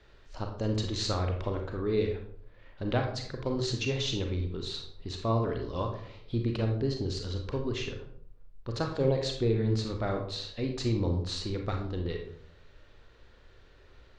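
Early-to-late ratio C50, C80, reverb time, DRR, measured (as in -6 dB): 5.5 dB, 9.5 dB, 0.65 s, 2.5 dB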